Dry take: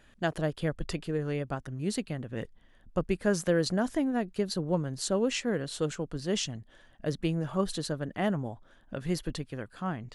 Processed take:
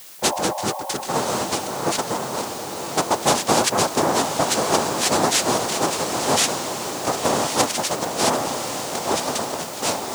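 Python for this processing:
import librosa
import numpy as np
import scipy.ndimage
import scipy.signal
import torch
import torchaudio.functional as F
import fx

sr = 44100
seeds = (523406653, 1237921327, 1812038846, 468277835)

p1 = fx.noise_vocoder(x, sr, seeds[0], bands=2)
p2 = fx.spec_repair(p1, sr, seeds[1], start_s=0.3, length_s=0.73, low_hz=520.0, high_hz=1100.0, source='both')
p3 = fx.quant_dither(p2, sr, seeds[2], bits=8, dither='triangular')
p4 = p2 + (p3 * librosa.db_to_amplitude(-6.5))
p5 = fx.tilt_eq(p4, sr, slope=2.0)
p6 = p5 + fx.echo_diffused(p5, sr, ms=1052, feedback_pct=50, wet_db=-5.5, dry=0)
y = p6 * librosa.db_to_amplitude(5.5)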